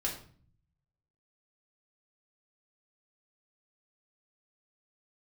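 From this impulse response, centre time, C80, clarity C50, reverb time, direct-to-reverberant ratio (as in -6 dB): 26 ms, 11.5 dB, 7.5 dB, 0.45 s, -3.5 dB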